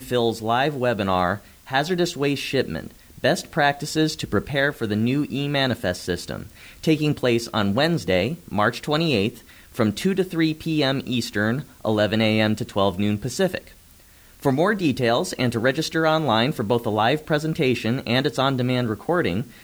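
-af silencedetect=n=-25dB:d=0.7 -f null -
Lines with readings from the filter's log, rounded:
silence_start: 13.58
silence_end: 14.44 | silence_duration: 0.86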